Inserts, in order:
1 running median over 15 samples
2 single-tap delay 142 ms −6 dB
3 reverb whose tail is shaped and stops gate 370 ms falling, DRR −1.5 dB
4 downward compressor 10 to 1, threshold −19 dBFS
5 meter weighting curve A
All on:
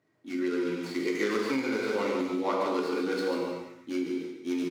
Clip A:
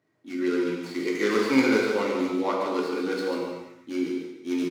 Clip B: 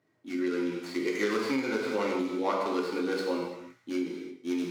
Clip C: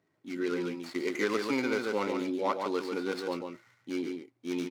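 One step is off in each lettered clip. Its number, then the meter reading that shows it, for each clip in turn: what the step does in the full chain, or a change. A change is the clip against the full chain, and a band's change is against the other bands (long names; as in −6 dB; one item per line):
4, average gain reduction 2.5 dB
2, change in momentary loudness spread +1 LU
3, change in momentary loudness spread +3 LU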